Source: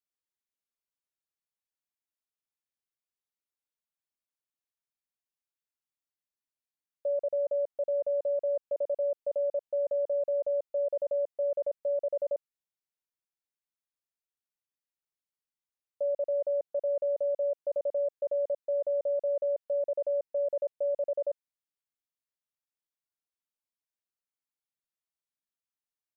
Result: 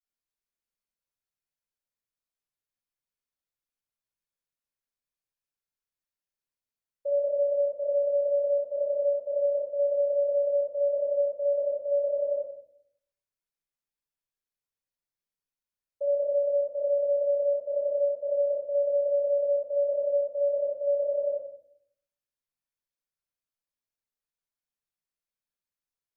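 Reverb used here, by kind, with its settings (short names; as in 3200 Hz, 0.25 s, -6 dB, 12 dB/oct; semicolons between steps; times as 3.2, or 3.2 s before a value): shoebox room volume 110 m³, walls mixed, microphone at 4.8 m; gain -15.5 dB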